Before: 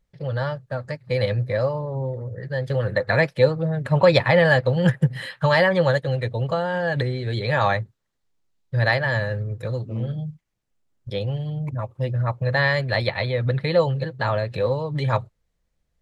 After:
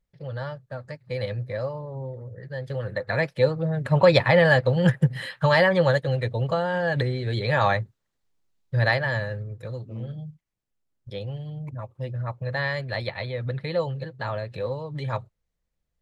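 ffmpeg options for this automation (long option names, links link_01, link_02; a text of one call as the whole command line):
ffmpeg -i in.wav -af "volume=-1dB,afade=type=in:start_time=3.02:duration=0.83:silence=0.501187,afade=type=out:start_time=8.77:duration=0.73:silence=0.501187" out.wav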